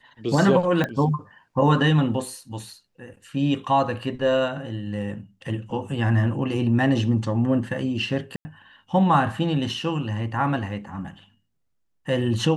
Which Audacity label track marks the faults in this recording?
0.840000	0.840000	pop -12 dBFS
8.360000	8.450000	gap 90 ms

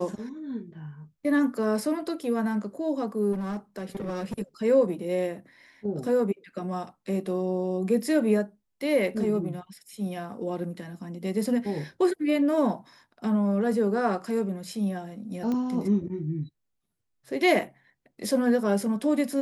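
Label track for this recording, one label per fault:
3.320000	4.340000	clipped -28 dBFS
15.520000	15.520000	pop -20 dBFS

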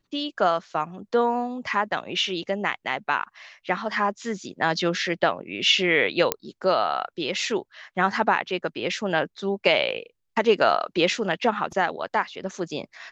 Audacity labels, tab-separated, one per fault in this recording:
6.320000	6.320000	pop -4 dBFS

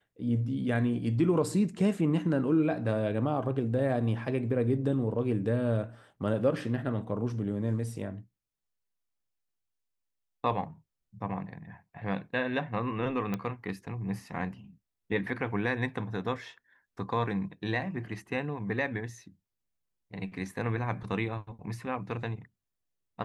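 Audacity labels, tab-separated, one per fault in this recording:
13.340000	13.340000	pop -19 dBFS

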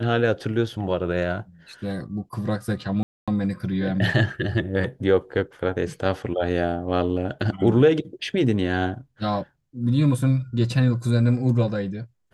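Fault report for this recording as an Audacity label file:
3.030000	3.280000	gap 0.246 s

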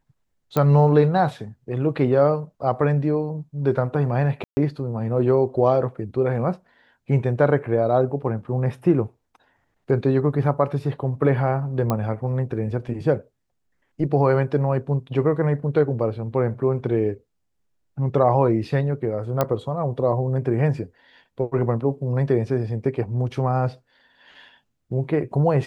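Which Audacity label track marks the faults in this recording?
0.570000	0.570000	pop -9 dBFS
4.440000	4.570000	gap 0.13 s
11.900000	11.900000	pop -10 dBFS
19.410000	19.410000	pop -7 dBFS

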